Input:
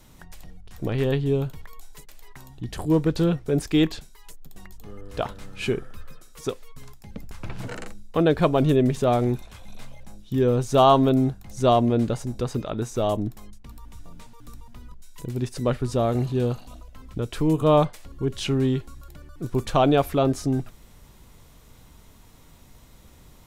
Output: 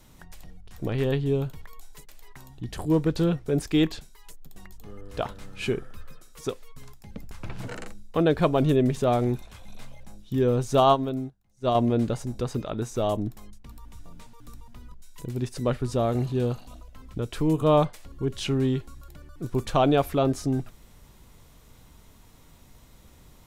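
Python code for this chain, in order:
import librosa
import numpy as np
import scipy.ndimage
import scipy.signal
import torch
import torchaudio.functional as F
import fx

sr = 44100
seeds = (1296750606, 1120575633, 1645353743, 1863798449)

y = fx.upward_expand(x, sr, threshold_db=-30.0, expansion=2.5, at=(10.8, 11.75))
y = y * librosa.db_to_amplitude(-2.0)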